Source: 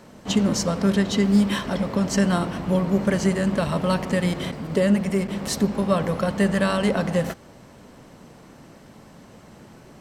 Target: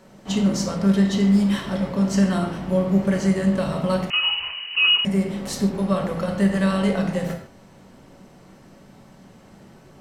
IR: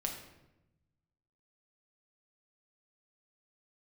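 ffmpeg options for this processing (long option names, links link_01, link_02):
-filter_complex "[1:a]atrim=start_sample=2205,afade=type=out:start_time=0.21:duration=0.01,atrim=end_sample=9702[link_01];[0:a][link_01]afir=irnorm=-1:irlink=0,asettb=1/sr,asplit=3[link_02][link_03][link_04];[link_02]atrim=end=4.104[link_05];[link_03]atrim=start=4.1:end=5.05,asetpts=PTS-STARTPTS,afade=type=in:duration=0.004:curve=qsin,afade=type=out:start_time=0.946:duration=0.004:curve=qsin,lowpass=frequency=2600:width_type=q:width=0.5098,lowpass=frequency=2600:width_type=q:width=0.6013,lowpass=frequency=2600:width_type=q:width=0.9,lowpass=frequency=2600:width_type=q:width=2.563,afreqshift=-3100[link_06];[link_04]atrim=start=5.046[link_07];[link_05][link_06]acrossfade=duration=0.004:curve1=hsin:curve2=qsin[link_08];[link_08][link_07]acrossfade=duration=0.004:curve1=qsin:curve2=hsin,volume=-3.5dB"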